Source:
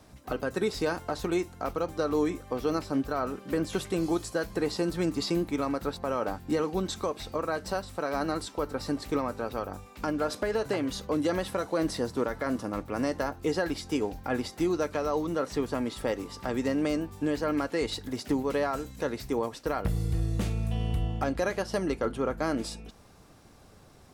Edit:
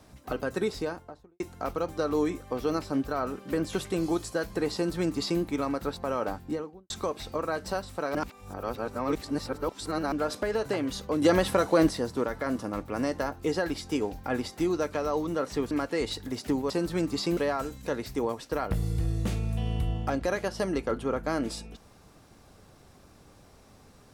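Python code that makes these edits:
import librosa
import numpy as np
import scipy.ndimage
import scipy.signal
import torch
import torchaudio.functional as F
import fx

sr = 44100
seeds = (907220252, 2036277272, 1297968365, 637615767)

y = fx.studio_fade_out(x, sr, start_s=0.54, length_s=0.86)
y = fx.studio_fade_out(y, sr, start_s=6.28, length_s=0.62)
y = fx.edit(y, sr, fx.duplicate(start_s=4.74, length_s=0.67, to_s=18.51),
    fx.reverse_span(start_s=8.15, length_s=1.97),
    fx.clip_gain(start_s=11.22, length_s=0.67, db=6.5),
    fx.cut(start_s=15.71, length_s=1.81), tone=tone)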